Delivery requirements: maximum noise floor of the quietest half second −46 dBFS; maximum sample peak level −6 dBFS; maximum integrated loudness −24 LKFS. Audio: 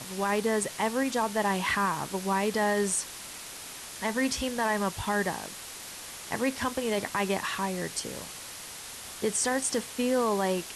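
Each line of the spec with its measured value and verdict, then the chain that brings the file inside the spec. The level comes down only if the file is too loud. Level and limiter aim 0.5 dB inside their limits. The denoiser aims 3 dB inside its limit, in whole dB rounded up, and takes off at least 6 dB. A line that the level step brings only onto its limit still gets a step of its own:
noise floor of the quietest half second −42 dBFS: out of spec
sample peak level −16.0 dBFS: in spec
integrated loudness −29.5 LKFS: in spec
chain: broadband denoise 7 dB, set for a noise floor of −42 dBFS

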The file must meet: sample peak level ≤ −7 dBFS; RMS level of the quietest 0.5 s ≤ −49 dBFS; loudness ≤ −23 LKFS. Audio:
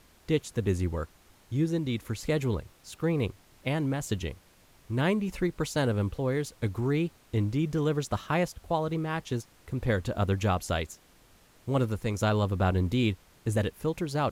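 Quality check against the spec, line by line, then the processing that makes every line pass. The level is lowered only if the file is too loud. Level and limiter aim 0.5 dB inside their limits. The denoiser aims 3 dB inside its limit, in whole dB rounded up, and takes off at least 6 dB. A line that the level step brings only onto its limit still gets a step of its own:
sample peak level −14.0 dBFS: in spec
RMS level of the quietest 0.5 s −59 dBFS: in spec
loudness −30.0 LKFS: in spec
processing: no processing needed

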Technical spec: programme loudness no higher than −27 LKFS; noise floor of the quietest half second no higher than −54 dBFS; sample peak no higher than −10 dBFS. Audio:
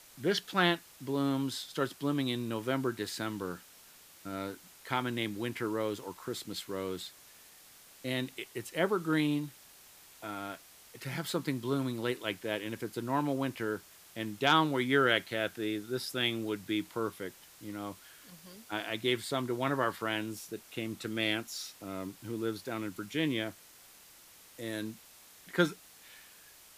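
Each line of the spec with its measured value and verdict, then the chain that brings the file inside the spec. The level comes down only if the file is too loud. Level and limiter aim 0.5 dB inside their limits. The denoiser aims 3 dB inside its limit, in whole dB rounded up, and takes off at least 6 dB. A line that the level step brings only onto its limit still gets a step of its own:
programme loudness −34.0 LKFS: in spec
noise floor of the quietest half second −57 dBFS: in spec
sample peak −12.0 dBFS: in spec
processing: no processing needed

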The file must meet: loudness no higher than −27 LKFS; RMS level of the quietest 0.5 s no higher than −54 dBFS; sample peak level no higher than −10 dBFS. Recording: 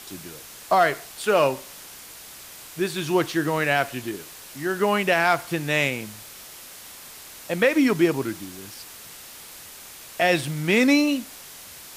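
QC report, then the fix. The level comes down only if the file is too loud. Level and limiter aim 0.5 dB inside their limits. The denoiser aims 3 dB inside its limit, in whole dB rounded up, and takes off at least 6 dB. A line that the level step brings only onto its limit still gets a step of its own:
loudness −22.5 LKFS: out of spec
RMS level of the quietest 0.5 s −43 dBFS: out of spec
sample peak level −7.0 dBFS: out of spec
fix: broadband denoise 9 dB, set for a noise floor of −43 dBFS
level −5 dB

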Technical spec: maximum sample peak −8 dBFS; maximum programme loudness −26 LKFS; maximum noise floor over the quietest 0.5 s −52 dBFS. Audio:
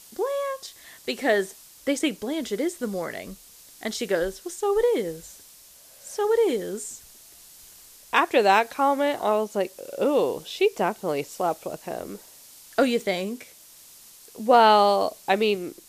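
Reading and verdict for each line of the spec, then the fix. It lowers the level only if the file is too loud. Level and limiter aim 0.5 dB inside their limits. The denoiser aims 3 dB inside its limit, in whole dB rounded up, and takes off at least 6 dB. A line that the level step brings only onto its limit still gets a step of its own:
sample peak −5.5 dBFS: out of spec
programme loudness −24.5 LKFS: out of spec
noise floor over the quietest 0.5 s −51 dBFS: out of spec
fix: level −2 dB
brickwall limiter −8.5 dBFS

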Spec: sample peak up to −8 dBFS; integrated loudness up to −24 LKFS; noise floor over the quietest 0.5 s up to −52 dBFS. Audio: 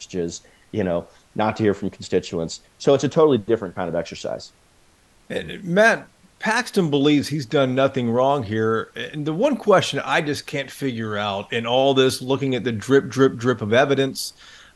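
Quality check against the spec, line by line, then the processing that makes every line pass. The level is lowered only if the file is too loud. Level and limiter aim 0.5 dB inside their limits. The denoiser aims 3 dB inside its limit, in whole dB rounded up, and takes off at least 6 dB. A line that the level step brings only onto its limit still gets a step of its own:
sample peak −1.5 dBFS: out of spec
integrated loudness −21.0 LKFS: out of spec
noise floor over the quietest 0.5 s −56 dBFS: in spec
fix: level −3.5 dB
brickwall limiter −8.5 dBFS

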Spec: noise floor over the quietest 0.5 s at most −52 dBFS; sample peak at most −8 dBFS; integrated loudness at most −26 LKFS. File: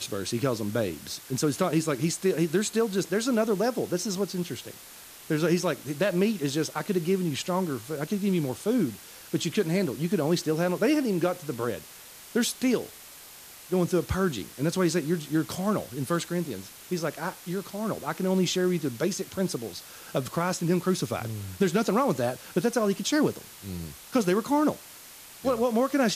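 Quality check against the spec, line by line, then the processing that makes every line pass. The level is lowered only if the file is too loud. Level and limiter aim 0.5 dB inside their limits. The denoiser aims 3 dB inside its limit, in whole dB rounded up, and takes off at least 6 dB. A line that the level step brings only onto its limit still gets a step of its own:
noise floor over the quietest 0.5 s −47 dBFS: out of spec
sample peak −11.0 dBFS: in spec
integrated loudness −27.5 LKFS: in spec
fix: broadband denoise 8 dB, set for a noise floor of −47 dBFS

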